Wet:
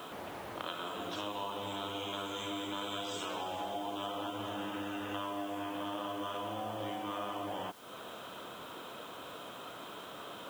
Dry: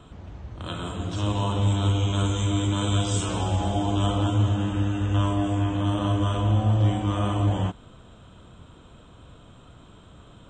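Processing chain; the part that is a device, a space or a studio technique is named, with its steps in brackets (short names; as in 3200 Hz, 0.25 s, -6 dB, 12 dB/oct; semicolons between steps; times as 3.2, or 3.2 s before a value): baby monitor (BPF 450–4400 Hz; compressor 6:1, threshold -47 dBFS, peak gain reduction 19 dB; white noise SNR 20 dB); gain +9.5 dB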